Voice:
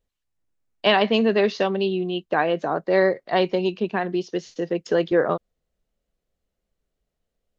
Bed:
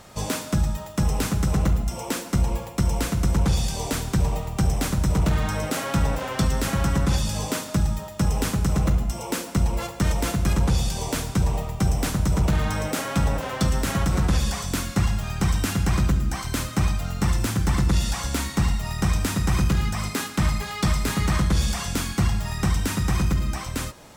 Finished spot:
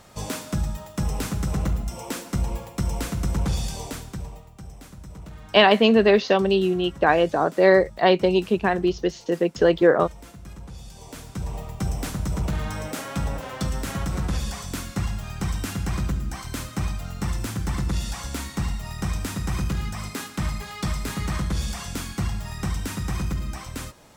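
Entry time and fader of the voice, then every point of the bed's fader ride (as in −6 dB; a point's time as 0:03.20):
4.70 s, +3.0 dB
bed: 0:03.72 −3.5 dB
0:04.59 −19.5 dB
0:10.71 −19.5 dB
0:11.70 −5 dB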